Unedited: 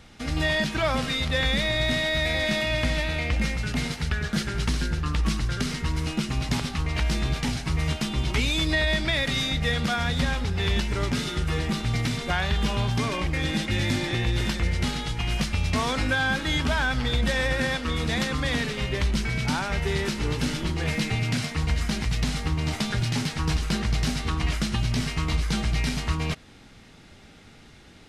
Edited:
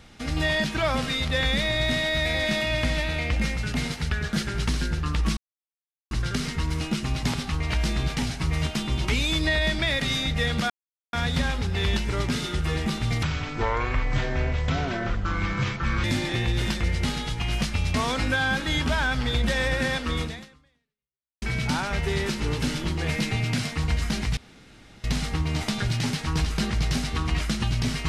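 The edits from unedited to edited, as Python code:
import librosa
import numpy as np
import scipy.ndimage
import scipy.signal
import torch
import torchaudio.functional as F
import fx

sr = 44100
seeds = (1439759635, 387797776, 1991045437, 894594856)

y = fx.edit(x, sr, fx.insert_silence(at_s=5.37, length_s=0.74),
    fx.insert_silence(at_s=9.96, length_s=0.43),
    fx.speed_span(start_s=12.06, length_s=1.77, speed=0.63),
    fx.fade_out_span(start_s=18.0, length_s=1.21, curve='exp'),
    fx.insert_room_tone(at_s=22.16, length_s=0.67), tone=tone)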